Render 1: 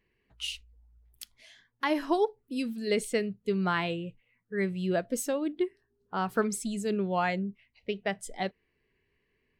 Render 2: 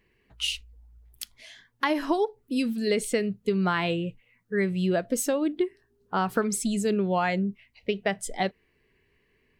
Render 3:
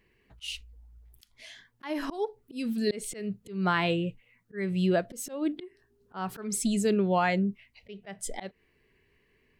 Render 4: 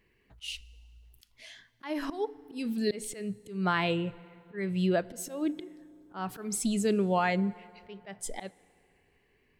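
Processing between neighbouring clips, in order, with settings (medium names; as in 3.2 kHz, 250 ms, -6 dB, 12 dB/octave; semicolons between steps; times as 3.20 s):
compression, threshold -28 dBFS, peak gain reduction 7.5 dB; trim +7 dB
slow attack 222 ms
FDN reverb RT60 2.7 s, high-frequency decay 0.65×, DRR 19.5 dB; trim -1.5 dB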